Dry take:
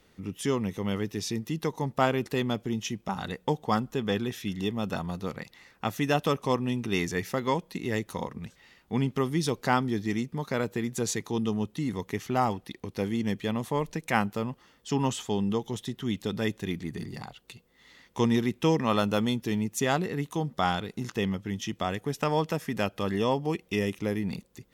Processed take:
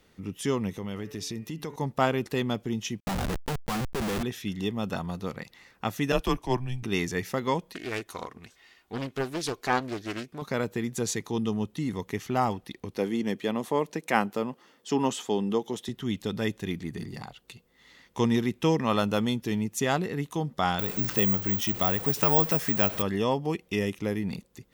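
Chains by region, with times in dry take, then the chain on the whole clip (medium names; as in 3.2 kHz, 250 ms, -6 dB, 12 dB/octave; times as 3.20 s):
0.70–1.76 s: de-hum 143.7 Hz, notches 21 + compression 4:1, threshold -31 dBFS
3.00–4.23 s: Schmitt trigger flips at -34.5 dBFS + level flattener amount 70%
6.12–6.83 s: frequency shift -120 Hz + three bands expanded up and down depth 100%
7.73–10.42 s: bass shelf 320 Hz -10.5 dB + comb 2.8 ms, depth 41% + loudspeaker Doppler distortion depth 0.55 ms
12.97–15.89 s: high-pass 310 Hz + bass shelf 480 Hz +8 dB
20.79–23.02 s: jump at every zero crossing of -34.5 dBFS + careless resampling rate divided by 2×, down filtered, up zero stuff
whole clip: none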